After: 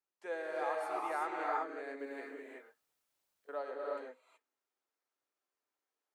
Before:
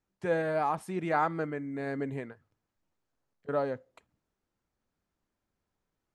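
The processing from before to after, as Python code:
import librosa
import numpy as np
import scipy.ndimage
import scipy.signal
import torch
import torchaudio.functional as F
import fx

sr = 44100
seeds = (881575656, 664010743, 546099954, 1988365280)

y = scipy.signal.sosfilt(scipy.signal.bessel(8, 510.0, 'highpass', norm='mag', fs=sr, output='sos'), x)
y = fx.rev_gated(y, sr, seeds[0], gate_ms=400, shape='rising', drr_db=-2.5)
y = fx.dmg_noise_colour(y, sr, seeds[1], colour='white', level_db=-76.0, at=(1.98, 3.57), fade=0.02)
y = F.gain(torch.from_numpy(y), -8.5).numpy()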